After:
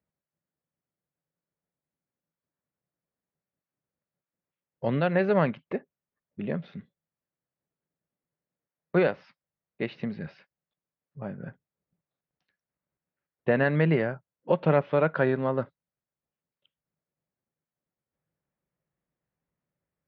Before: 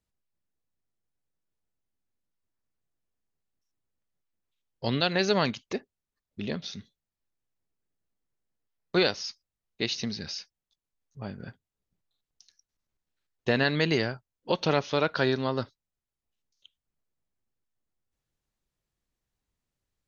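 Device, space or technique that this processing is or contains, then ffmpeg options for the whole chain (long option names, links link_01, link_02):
bass cabinet: -af "highpass=87,equalizer=frequency=93:width_type=q:width=4:gain=-5,equalizer=frequency=160:width_type=q:width=4:gain=8,equalizer=frequency=560:width_type=q:width=4:gain=6,lowpass=frequency=2200:width=0.5412,lowpass=frequency=2200:width=1.3066"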